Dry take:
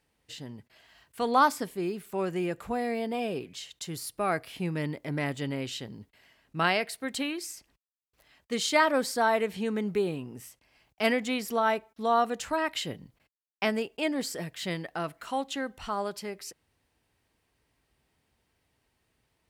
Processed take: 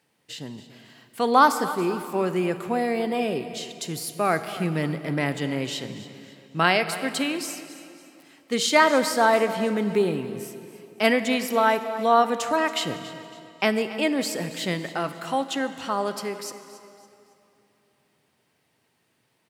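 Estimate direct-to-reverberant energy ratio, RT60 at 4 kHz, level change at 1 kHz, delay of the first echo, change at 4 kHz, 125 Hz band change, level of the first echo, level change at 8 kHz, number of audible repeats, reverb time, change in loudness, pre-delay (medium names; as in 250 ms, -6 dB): 10.0 dB, 2.2 s, +6.0 dB, 278 ms, +6.0 dB, +5.5 dB, -16.0 dB, +6.0 dB, 3, 2.8 s, +6.0 dB, 34 ms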